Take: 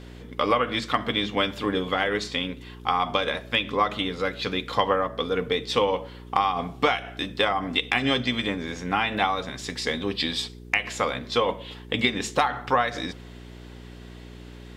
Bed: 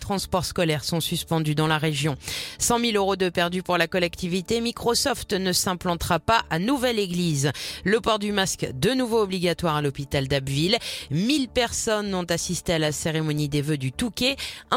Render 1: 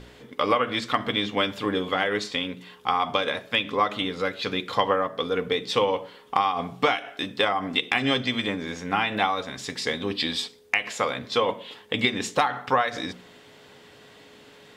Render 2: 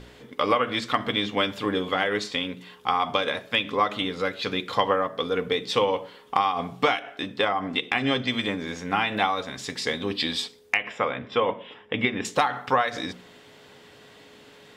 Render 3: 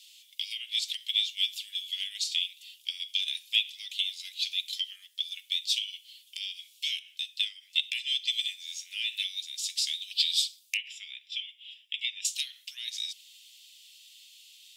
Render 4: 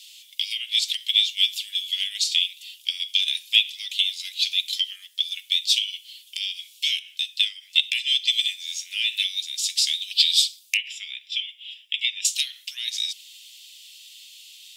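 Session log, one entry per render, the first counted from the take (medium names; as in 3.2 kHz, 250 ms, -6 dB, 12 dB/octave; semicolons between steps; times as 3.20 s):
de-hum 60 Hz, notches 6
6.99–8.28 s: treble shelf 4.1 kHz -7 dB; 10.77–12.25 s: Savitzky-Golay filter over 25 samples
steep high-pass 2.7 kHz 48 dB/octave; treble shelf 6.1 kHz +10 dB
trim +8 dB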